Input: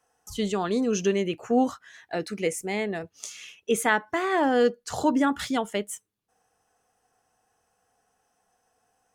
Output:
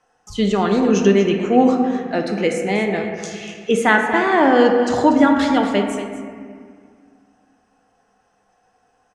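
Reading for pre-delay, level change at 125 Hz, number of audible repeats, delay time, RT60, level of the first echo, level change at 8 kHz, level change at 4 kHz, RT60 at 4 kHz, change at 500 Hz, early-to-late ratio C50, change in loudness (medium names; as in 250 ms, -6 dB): 3 ms, +11.0 dB, 1, 239 ms, 2.0 s, -11.0 dB, +1.0 dB, +7.0 dB, 1.1 s, +9.0 dB, 3.5 dB, +9.5 dB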